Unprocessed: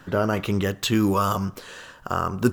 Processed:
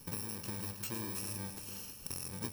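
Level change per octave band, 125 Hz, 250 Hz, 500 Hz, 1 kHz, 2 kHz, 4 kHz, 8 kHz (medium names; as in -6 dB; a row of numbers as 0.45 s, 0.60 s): -18.0 dB, -21.0 dB, -24.5 dB, -25.0 dB, -18.5 dB, -14.0 dB, -4.0 dB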